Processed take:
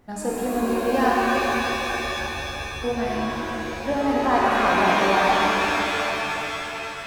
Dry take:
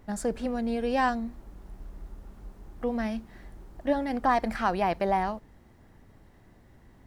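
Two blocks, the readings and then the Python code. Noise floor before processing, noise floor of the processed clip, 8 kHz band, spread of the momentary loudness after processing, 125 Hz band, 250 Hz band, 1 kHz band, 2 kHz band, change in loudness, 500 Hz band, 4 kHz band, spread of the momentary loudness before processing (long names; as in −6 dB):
−57 dBFS, −32 dBFS, can't be measured, 10 LU, +7.0 dB, +6.0 dB, +8.5 dB, +14.0 dB, +6.5 dB, +8.0 dB, +17.0 dB, 21 LU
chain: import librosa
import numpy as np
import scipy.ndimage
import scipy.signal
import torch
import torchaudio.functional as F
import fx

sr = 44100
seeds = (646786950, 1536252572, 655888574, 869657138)

y = fx.low_shelf(x, sr, hz=83.0, db=-8.0)
y = fx.rev_shimmer(y, sr, seeds[0], rt60_s=3.7, semitones=7, shimmer_db=-2, drr_db=-4.5)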